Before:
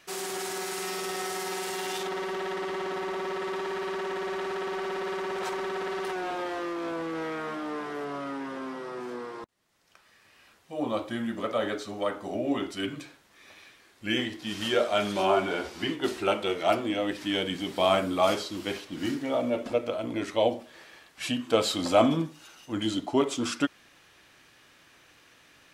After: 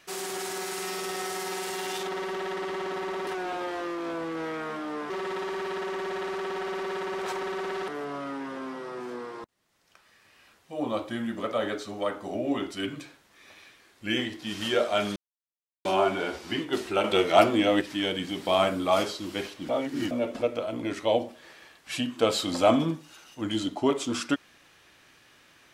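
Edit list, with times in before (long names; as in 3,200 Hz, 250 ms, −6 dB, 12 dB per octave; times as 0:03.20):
0:06.05–0:07.88: move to 0:03.27
0:15.16: splice in silence 0.69 s
0:16.35–0:17.12: clip gain +6 dB
0:19.00–0:19.42: reverse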